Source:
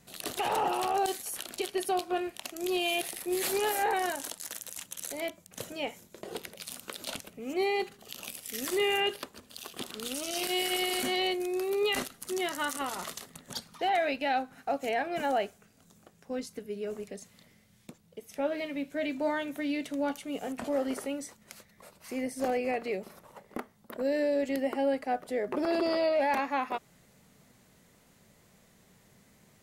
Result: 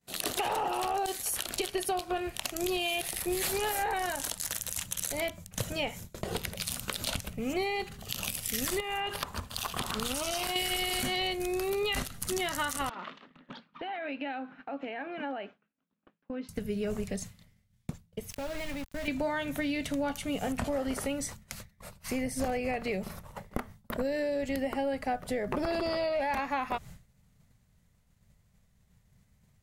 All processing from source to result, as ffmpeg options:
-filter_complex "[0:a]asettb=1/sr,asplit=3[s0][s1][s2];[s0]atrim=end=8.804[s3];[s1]atrim=start=8.8:end=10.56,asetpts=PTS-STARTPTS,afade=t=in:d=0.004:c=qsin,afade=t=out:st=1.756:d=0.004:c=qsin,equalizer=f=1000:w=1.2:g=11,acompressor=threshold=0.0224:ratio=16:attack=3.2:release=140:knee=1:detection=peak[s4];[s2]atrim=start=10.556[s5];[s3][s4]acrossfade=d=0.004:c1=hsin:c2=qsin[s6];[s6][s5]acrossfade=d=0.004:c1=qsin:c2=hsin,asettb=1/sr,asplit=3[s7][s8][s9];[s7]atrim=end=12.894[s10];[s8]atrim=start=12.89:end=16.49,asetpts=PTS-STARTPTS,afade=t=in:d=0.004:c=qsin,afade=t=out:st=3.596:d=0.004:c=qsin,acompressor=threshold=0.00794:ratio=3:attack=3.2:release=140:knee=1:detection=peak,highpass=f=240:w=0.5412,highpass=f=240:w=1.3066,equalizer=f=290:t=q:w=4:g=7,equalizer=f=420:t=q:w=4:g=-3,equalizer=f=720:t=q:w=4:g=-6,equalizer=f=2000:t=q:w=4:g=-4,lowpass=f=2900:w=0.5412,lowpass=f=2900:w=1.3066[s11];[s9]atrim=start=16.486[s12];[s10][s11]acrossfade=d=0.004:c1=hsin:c2=qsin[s13];[s13][s12]acrossfade=d=0.004:c1=qsin:c2=hsin,asettb=1/sr,asplit=3[s14][s15][s16];[s14]atrim=end=18.304[s17];[s15]atrim=start=18.3:end=19.08,asetpts=PTS-STARTPTS,afade=t=in:d=0.004:c=qsin,afade=t=out:st=0.776:d=0.004:c=qsin,acompressor=threshold=0.00891:ratio=5:attack=3.2:release=140:knee=1:detection=peak,aeval=exprs='val(0)*gte(abs(val(0)),0.00422)':c=same[s18];[s16]atrim=start=19.076[s19];[s17][s18]acrossfade=d=0.004:c1=hsin:c2=qsin[s20];[s20][s19]acrossfade=d=0.004:c1=qsin:c2=hsin,agate=range=0.0224:threshold=0.00398:ratio=3:detection=peak,asubboost=boost=10.5:cutoff=100,acompressor=threshold=0.0141:ratio=6,volume=2.66"

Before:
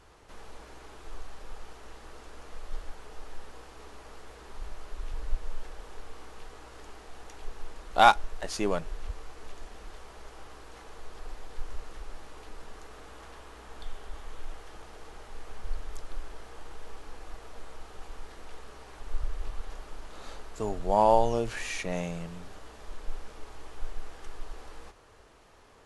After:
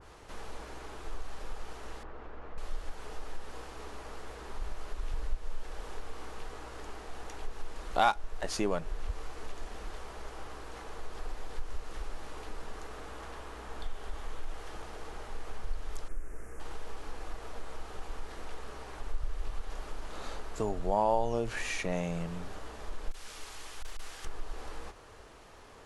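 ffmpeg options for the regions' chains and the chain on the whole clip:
-filter_complex "[0:a]asettb=1/sr,asplit=3[s0][s1][s2];[s0]atrim=end=2.034[s3];[s1]atrim=start=2.03:end=2.58,asetpts=PTS-STARTPTS,afade=t=in:d=0.004:c=qsin,afade=t=out:st=0.546:d=0.004:c=qsin,lowpass=1800,acompressor=threshold=0.00562:ratio=1.5:attack=3.2:release=140:knee=1:detection=peak[s4];[s2]atrim=start=2.576[s5];[s3][s4]acrossfade=d=0.004:c1=hsin:c2=qsin[s6];[s6][s5]acrossfade=d=0.004:c1=qsin:c2=hsin,asettb=1/sr,asplit=3[s7][s8][s9];[s7]atrim=end=16.084[s10];[s8]atrim=start=16.08:end=16.6,asetpts=PTS-STARTPTS,afade=t=in:d=0.004:c=qsin,afade=t=out:st=0.516:d=0.004:c=qsin,asuperstop=centerf=3800:order=4:qfactor=0.77,equalizer=f=880:t=o:w=1.2:g=-11[s11];[s9]atrim=start=16.596[s12];[s10][s11]acrossfade=d=0.004:c1=hsin:c2=qsin[s13];[s13][s12]acrossfade=d=0.004:c1=qsin:c2=hsin,asettb=1/sr,asplit=3[s14][s15][s16];[s14]atrim=end=23.114[s17];[s15]atrim=start=23.11:end=24.25,asetpts=PTS-STARTPTS,afade=t=in:d=0.004:c=qsin,afade=t=out:st=1.136:d=0.004:c=qsin,tiltshelf=f=1500:g=-9,asoftclip=type=hard:threshold=0.0168[s18];[s16]atrim=start=24.246[s19];[s17][s18]acrossfade=d=0.004:c1=hsin:c2=qsin[s20];[s20][s19]acrossfade=d=0.004:c1=qsin:c2=hsin,acompressor=threshold=0.0178:ratio=2,adynamicequalizer=threshold=0.00178:dfrequency=2200:dqfactor=0.7:tfrequency=2200:tqfactor=0.7:attack=5:release=100:ratio=0.375:range=1.5:mode=cutabove:tftype=highshelf,volume=1.58"

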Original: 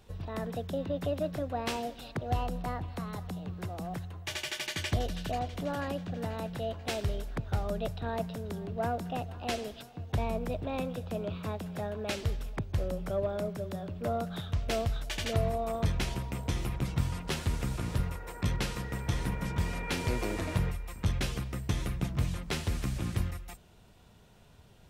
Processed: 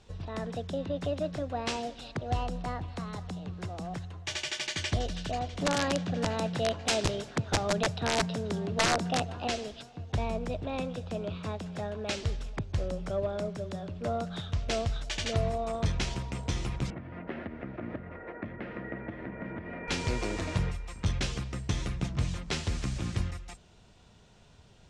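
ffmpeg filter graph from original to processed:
-filter_complex "[0:a]asettb=1/sr,asplit=3[s0][s1][s2];[s0]atrim=end=5.614[s3];[s1]atrim=start=5.61:end=9.48,asetpts=PTS-STARTPTS,afade=t=in:d=0.004:c=qsin,afade=t=out:st=3.866:d=0.004:c=qsin,acontrast=42,highpass=f=95:w=0.5412,highpass=f=95:w=1.3066,aeval=exprs='(mod(9.44*val(0)+1,2)-1)/9.44':c=same[s4];[s2]atrim=start=9.476[s5];[s3][s4]acrossfade=d=0.004:c1=hsin:c2=qsin[s6];[s6][s5]acrossfade=d=0.004:c1=qsin:c2=hsin,asettb=1/sr,asplit=3[s7][s8][s9];[s7]atrim=end=16.904[s10];[s8]atrim=start=16.9:end=19.88,asetpts=PTS-STARTPTS,afade=t=in:d=0.004:c=qsin,afade=t=out:st=2.976:d=0.004:c=qsin,acompressor=threshold=0.0224:ratio=12:attack=3.2:release=140:knee=1:detection=peak,highpass=120,equalizer=f=150:t=q:w=4:g=-7,equalizer=f=230:t=q:w=4:g=7,equalizer=f=330:t=q:w=4:g=8,equalizer=f=630:t=q:w=4:g=9,equalizer=f=970:t=q:w=4:g=-5,equalizer=f=1900:t=q:w=4:g=5,lowpass=f=2100:w=0.5412,lowpass=f=2100:w=1.3066[s11];[s9]atrim=start=19.876[s12];[s10][s11]acrossfade=d=0.004:c1=hsin:c2=qsin[s13];[s13][s12]acrossfade=d=0.004:c1=qsin:c2=hsin,lowpass=f=7300:w=0.5412,lowpass=f=7300:w=1.3066,highshelf=f=5000:g=7.5"

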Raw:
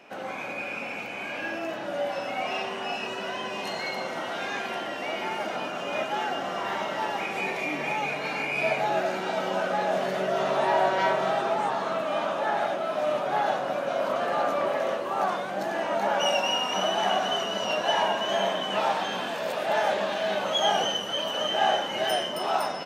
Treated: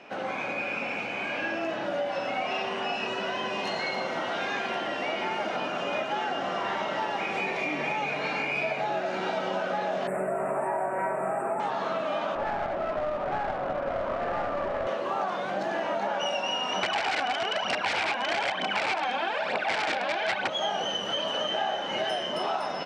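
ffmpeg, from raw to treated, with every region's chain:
-filter_complex "[0:a]asettb=1/sr,asplit=3[s0][s1][s2];[s0]atrim=end=10.074[s3];[s1]atrim=start=10.07:end=11.6,asetpts=PTS-STARTPTS,afade=t=in:d=0.004:c=qsin,afade=t=out:st=1.526:d=0.004:c=qsin,highshelf=f=3900:t=q:w=3:g=13,acrusher=bits=5:mode=log:mix=0:aa=0.000001,asuperstop=centerf=4600:order=20:qfactor=0.89[s4];[s2]atrim=start=11.596[s5];[s3][s4]acrossfade=d=0.004:c1=hsin:c2=qsin[s6];[s6][s5]acrossfade=d=0.004:c1=qsin:c2=hsin,asettb=1/sr,asplit=3[s7][s8][s9];[s7]atrim=end=12.354[s10];[s8]atrim=start=12.35:end=14.87,asetpts=PTS-STARTPTS,afade=t=in:d=0.004:c=qsin,afade=t=out:st=2.516:d=0.004:c=qsin,lowpass=1700,aeval=exprs='clip(val(0),-1,0.0355)':c=same[s11];[s9]atrim=start=14.866[s12];[s10][s11]acrossfade=d=0.004:c1=hsin:c2=qsin[s13];[s13][s12]acrossfade=d=0.004:c1=qsin:c2=hsin,asettb=1/sr,asplit=3[s14][s15][s16];[s14]atrim=end=16.834[s17];[s15]atrim=start=16.83:end=20.5,asetpts=PTS-STARTPTS,afade=t=in:d=0.004:c=qsin,afade=t=out:st=3.666:d=0.004:c=qsin,aphaser=in_gain=1:out_gain=1:delay=4.2:decay=0.7:speed=1.1:type=triangular,aeval=exprs='(mod(7.08*val(0)+1,2)-1)/7.08':c=same,highpass=f=110:w=0.5412,highpass=f=110:w=1.3066,equalizer=f=150:t=q:w=4:g=-8,equalizer=f=790:t=q:w=4:g=8,equalizer=f=1500:t=q:w=4:g=6,equalizer=f=2300:t=q:w=4:g=9,equalizer=f=6500:t=q:w=4:g=-6,lowpass=f=8000:w=0.5412,lowpass=f=8000:w=1.3066[s18];[s16]atrim=start=20.496[s19];[s17][s18]acrossfade=d=0.004:c1=hsin:c2=qsin[s20];[s20][s19]acrossfade=d=0.004:c1=qsin:c2=hsin,lowpass=5700,acompressor=threshold=0.0355:ratio=6,volume=1.41"

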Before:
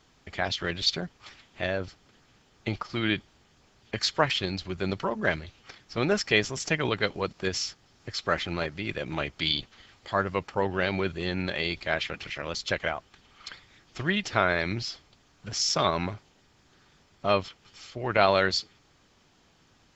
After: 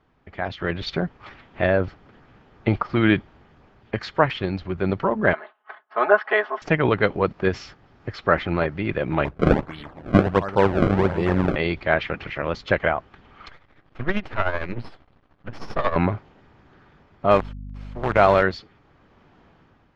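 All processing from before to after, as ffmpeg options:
-filter_complex "[0:a]asettb=1/sr,asplit=3[s0][s1][s2];[s0]atrim=end=5.334[s3];[s1]atrim=start=5.33:end=6.62,asetpts=PTS-STARTPTS,afade=t=in:d=0.004:c=qsin,afade=t=out:st=1.286:d=0.004:c=qsin,aecho=1:1:4.7:0.88,atrim=end_sample=56889,agate=range=0.0224:threshold=0.00501:ratio=3:release=100:detection=peak,highpass=f=440:w=0.5412,highpass=f=440:w=1.3066,equalizer=f=460:t=q:w=4:g=-10,equalizer=f=710:t=q:w=4:g=6,equalizer=f=1100:t=q:w=4:g=6,equalizer=f=1600:t=q:w=4:g=4,equalizer=f=2400:t=q:w=4:g=-9,lowpass=f=3000:w=0.5412,lowpass=f=3000:w=1.3066[s4];[s2]atrim=start=6.616[s5];[s3][s4]acrossfade=d=0.004:c1=hsin:c2=qsin[s6];[s6][s5]acrossfade=d=0.004:c1=qsin:c2=hsin,asettb=1/sr,asplit=3[s7][s8][s9];[s7]atrim=end=9.254[s10];[s8]atrim=start=9.25:end=11.56,asetpts=PTS-STARTPTS,afade=t=in:d=0.004:c=qsin,afade=t=out:st=2.306:d=0.004:c=qsin,asplit=2[s11][s12];[s12]adelay=275,lowpass=f=4100:p=1,volume=0.211,asplit=2[s13][s14];[s14]adelay=275,lowpass=f=4100:p=1,volume=0.53,asplit=2[s15][s16];[s16]adelay=275,lowpass=f=4100:p=1,volume=0.53,asplit=2[s17][s18];[s18]adelay=275,lowpass=f=4100:p=1,volume=0.53,asplit=2[s19][s20];[s20]adelay=275,lowpass=f=4100:p=1,volume=0.53[s21];[s11][s13][s15][s17][s19][s21]amix=inputs=6:normalize=0,atrim=end_sample=101871,acrusher=samples=28:mix=1:aa=0.000001:lfo=1:lforange=44.8:lforate=1.4[s22];[s9]atrim=start=11.556[s23];[s10][s22]acrossfade=d=0.004:c1=hsin:c2=qsin[s24];[s24][s23]acrossfade=d=0.004:c1=qsin:c2=hsin,asettb=1/sr,asplit=3[s25][s26][s27];[s25]atrim=end=13.484[s28];[s26]atrim=start=13.48:end=15.96,asetpts=PTS-STARTPTS,afade=t=in:d=0.004:c=qsin,afade=t=out:st=2.476:d=0.004:c=qsin,lowpass=4400,aeval=exprs='max(val(0),0)':c=same,tremolo=f=13:d=0.66[s29];[s27]atrim=start=15.956[s30];[s28][s29]acrossfade=d=0.004:c1=hsin:c2=qsin[s31];[s31][s30]acrossfade=d=0.004:c1=qsin:c2=hsin,asettb=1/sr,asplit=3[s32][s33][s34];[s32]atrim=end=17.314[s35];[s33]atrim=start=17.31:end=18.43,asetpts=PTS-STARTPTS,afade=t=in:d=0.004:c=qsin,afade=t=out:st=1.116:d=0.004:c=qsin,acrusher=bits=5:dc=4:mix=0:aa=0.000001,aeval=exprs='val(0)+0.00891*(sin(2*PI*50*n/s)+sin(2*PI*2*50*n/s)/2+sin(2*PI*3*50*n/s)/3+sin(2*PI*4*50*n/s)/4+sin(2*PI*5*50*n/s)/5)':c=same[s36];[s34]atrim=start=18.426[s37];[s35][s36]acrossfade=d=0.004:c1=hsin:c2=qsin[s38];[s38][s37]acrossfade=d=0.004:c1=qsin:c2=hsin,lowpass=1700,dynaudnorm=f=190:g=7:m=3.76"

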